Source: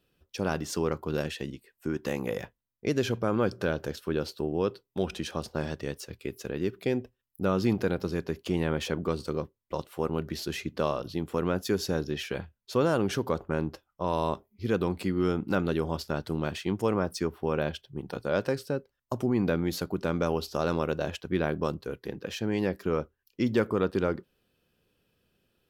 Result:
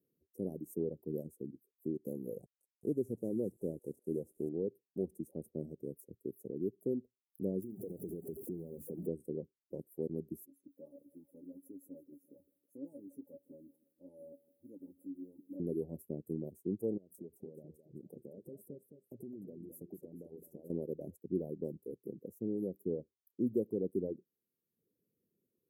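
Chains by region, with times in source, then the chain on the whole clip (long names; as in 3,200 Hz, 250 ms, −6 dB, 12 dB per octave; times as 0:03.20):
0:02.40–0:04.49: hold until the input has moved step −38.5 dBFS + low-pass filter 8,200 Hz + delay with a high-pass on its return 203 ms, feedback 61%, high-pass 2,200 Hz, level −3 dB
0:07.62–0:09.07: converter with a step at zero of −31 dBFS + mains-hum notches 50/100/150/200/250/300 Hz + downward compressor 8 to 1, threshold −29 dBFS
0:10.46–0:15.60: stiff-string resonator 280 Hz, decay 0.21 s, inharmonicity 0.002 + feedback echo at a low word length 161 ms, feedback 55%, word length 10 bits, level −11 dB
0:16.97–0:20.70: downward compressor 12 to 1, threshold −35 dBFS + feedback echo with a swinging delay time 214 ms, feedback 39%, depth 51 cents, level −8 dB
whole clip: inverse Chebyshev band-stop filter 1,200–4,600 Hz, stop band 60 dB; reverb reduction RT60 0.77 s; high-pass filter 180 Hz 12 dB per octave; level −4.5 dB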